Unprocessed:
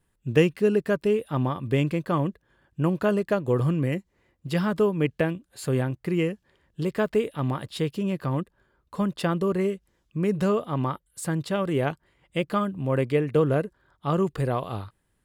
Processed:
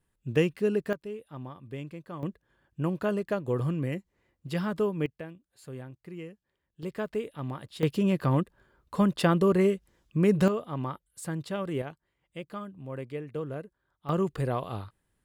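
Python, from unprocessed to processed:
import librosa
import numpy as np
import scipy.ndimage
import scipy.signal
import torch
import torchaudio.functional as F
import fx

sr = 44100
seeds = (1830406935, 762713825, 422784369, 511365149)

y = fx.gain(x, sr, db=fx.steps((0.0, -5.0), (0.93, -15.5), (2.23, -5.5), (5.06, -16.5), (6.83, -8.5), (7.83, 2.0), (10.48, -6.5), (11.82, -13.5), (14.09, -3.5)))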